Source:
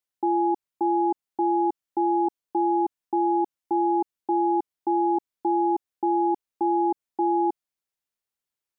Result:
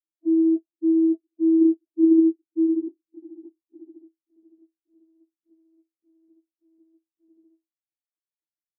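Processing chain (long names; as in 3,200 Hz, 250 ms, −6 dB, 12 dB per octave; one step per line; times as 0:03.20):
linear delta modulator 32 kbit/s, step −38 dBFS
gate on every frequency bin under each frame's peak −20 dB weak
noise gate with hold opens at −32 dBFS
tilt shelving filter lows +9 dB, about 910 Hz
leveller curve on the samples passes 5
low-pass filter sweep 450 Hz → 170 Hz, 0:01.20–0:04.80
spectral peaks only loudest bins 4
channel vocoder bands 32, saw 325 Hz
level +4.5 dB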